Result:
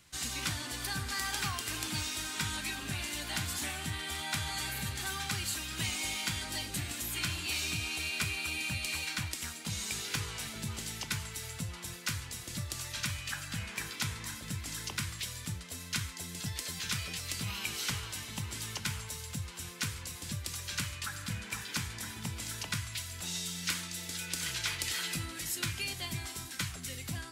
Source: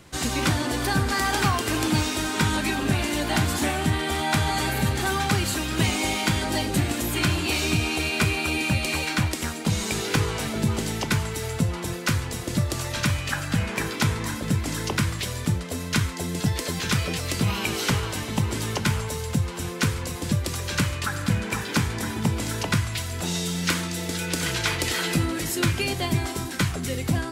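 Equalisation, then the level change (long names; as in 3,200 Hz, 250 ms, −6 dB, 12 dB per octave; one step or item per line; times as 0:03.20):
guitar amp tone stack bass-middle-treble 5-5-5
0.0 dB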